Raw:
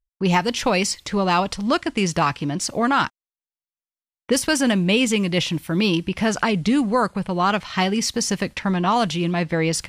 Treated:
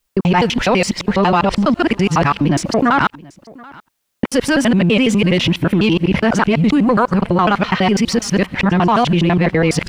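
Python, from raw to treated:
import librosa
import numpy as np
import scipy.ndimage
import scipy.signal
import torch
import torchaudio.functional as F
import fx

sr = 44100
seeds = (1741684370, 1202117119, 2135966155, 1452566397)

p1 = fx.local_reverse(x, sr, ms=83.0)
p2 = fx.over_compress(p1, sr, threshold_db=-24.0, ratio=-1.0)
p3 = p1 + F.gain(torch.from_numpy(p2), 0.0).numpy()
p4 = fx.leveller(p3, sr, passes=1)
p5 = fx.bass_treble(p4, sr, bass_db=0, treble_db=-13)
p6 = p5 + fx.echo_single(p5, sr, ms=731, db=-23.5, dry=0)
y = fx.quant_dither(p6, sr, seeds[0], bits=12, dither='triangular')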